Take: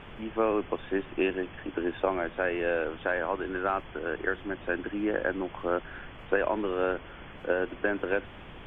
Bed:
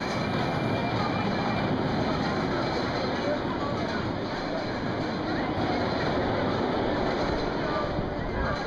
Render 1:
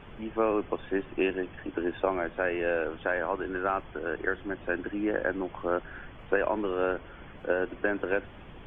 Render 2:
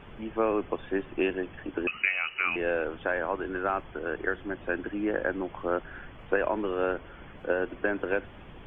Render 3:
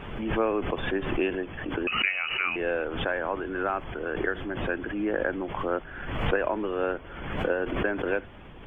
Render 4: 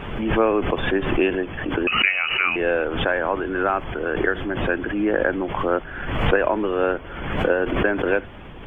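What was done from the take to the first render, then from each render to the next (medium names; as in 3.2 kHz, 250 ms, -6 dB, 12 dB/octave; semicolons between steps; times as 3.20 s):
noise reduction 6 dB, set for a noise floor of -46 dBFS
1.87–2.56 s: frequency inversion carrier 2.9 kHz
swell ahead of each attack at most 45 dB/s
trim +7 dB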